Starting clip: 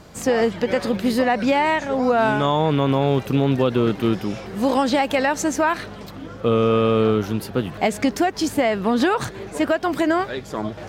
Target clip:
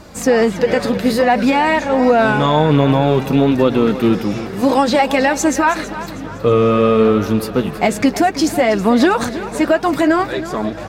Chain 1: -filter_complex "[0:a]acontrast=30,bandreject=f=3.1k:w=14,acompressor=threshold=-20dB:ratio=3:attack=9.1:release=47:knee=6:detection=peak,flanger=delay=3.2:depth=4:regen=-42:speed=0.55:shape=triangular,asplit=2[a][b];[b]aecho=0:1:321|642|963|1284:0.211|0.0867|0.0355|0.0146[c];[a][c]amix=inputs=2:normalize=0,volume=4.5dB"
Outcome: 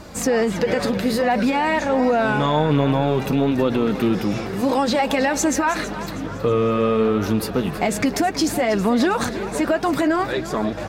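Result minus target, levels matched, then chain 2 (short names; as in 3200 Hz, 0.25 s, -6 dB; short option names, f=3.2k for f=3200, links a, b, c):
compressor: peak gain reduction +7.5 dB
-filter_complex "[0:a]acontrast=30,bandreject=f=3.1k:w=14,flanger=delay=3.2:depth=4:regen=-42:speed=0.55:shape=triangular,asplit=2[a][b];[b]aecho=0:1:321|642|963|1284:0.211|0.0867|0.0355|0.0146[c];[a][c]amix=inputs=2:normalize=0,volume=4.5dB"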